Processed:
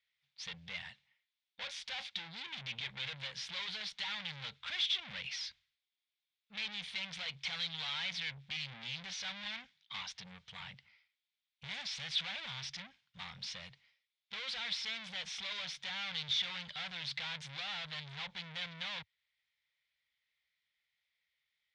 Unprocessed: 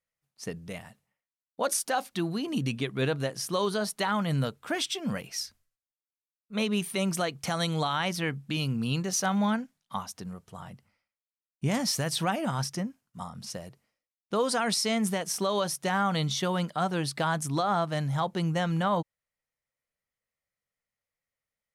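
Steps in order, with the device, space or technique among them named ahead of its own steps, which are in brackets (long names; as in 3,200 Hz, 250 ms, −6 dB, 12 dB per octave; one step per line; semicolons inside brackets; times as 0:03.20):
scooped metal amplifier (tube saturation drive 44 dB, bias 0.4; loudspeaker in its box 79–4,500 Hz, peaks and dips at 98 Hz −9 dB, 390 Hz −7 dB, 650 Hz −6 dB, 1,200 Hz −6 dB, 2,200 Hz +6 dB, 3,500 Hz +9 dB; guitar amp tone stack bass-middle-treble 10-0-10)
level +11 dB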